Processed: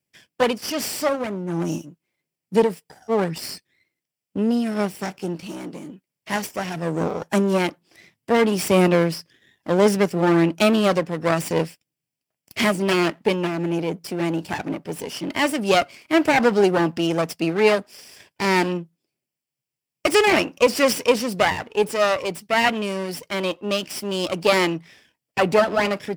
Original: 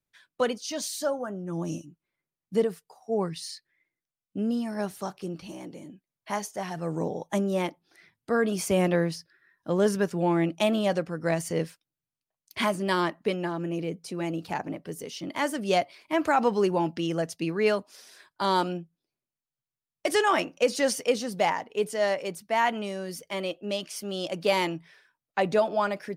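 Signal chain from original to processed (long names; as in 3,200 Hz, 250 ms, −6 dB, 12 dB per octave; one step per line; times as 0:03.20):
lower of the sound and its delayed copy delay 0.38 ms
high-pass filter 110 Hz 12 dB per octave
level +8 dB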